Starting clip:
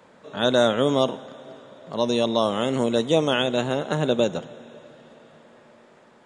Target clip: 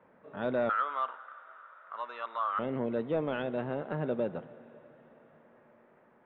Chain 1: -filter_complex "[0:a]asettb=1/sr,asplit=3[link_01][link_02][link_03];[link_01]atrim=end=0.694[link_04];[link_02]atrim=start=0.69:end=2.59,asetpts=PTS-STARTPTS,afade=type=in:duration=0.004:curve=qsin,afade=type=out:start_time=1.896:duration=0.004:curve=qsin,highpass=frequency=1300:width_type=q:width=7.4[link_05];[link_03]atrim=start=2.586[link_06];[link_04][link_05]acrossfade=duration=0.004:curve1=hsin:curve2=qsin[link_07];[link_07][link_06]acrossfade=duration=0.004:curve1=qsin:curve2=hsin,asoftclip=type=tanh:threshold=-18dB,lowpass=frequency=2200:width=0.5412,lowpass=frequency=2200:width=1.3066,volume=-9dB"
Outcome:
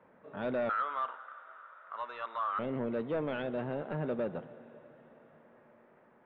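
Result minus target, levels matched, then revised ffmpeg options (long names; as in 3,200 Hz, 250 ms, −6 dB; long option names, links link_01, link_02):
soft clipping: distortion +7 dB
-filter_complex "[0:a]asettb=1/sr,asplit=3[link_01][link_02][link_03];[link_01]atrim=end=0.694[link_04];[link_02]atrim=start=0.69:end=2.59,asetpts=PTS-STARTPTS,afade=type=in:duration=0.004:curve=qsin,afade=type=out:start_time=1.896:duration=0.004:curve=qsin,highpass=frequency=1300:width_type=q:width=7.4[link_05];[link_03]atrim=start=2.586[link_06];[link_04][link_05]acrossfade=duration=0.004:curve1=hsin:curve2=qsin[link_07];[link_07][link_06]acrossfade=duration=0.004:curve1=qsin:curve2=hsin,asoftclip=type=tanh:threshold=-11.5dB,lowpass=frequency=2200:width=0.5412,lowpass=frequency=2200:width=1.3066,volume=-9dB"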